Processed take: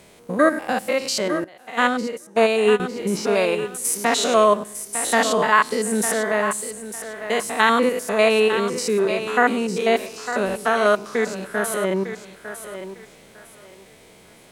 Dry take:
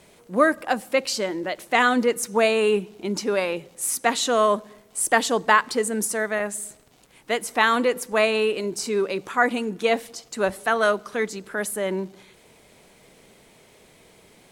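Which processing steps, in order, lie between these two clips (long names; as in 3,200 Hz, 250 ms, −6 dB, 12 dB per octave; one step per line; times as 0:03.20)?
spectrum averaged block by block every 100 ms
feedback echo with a high-pass in the loop 903 ms, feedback 25%, high-pass 300 Hz, level −9.5 dB
0:01.44–0:02.80: expander for the loud parts 2.5 to 1, over −30 dBFS
level +5 dB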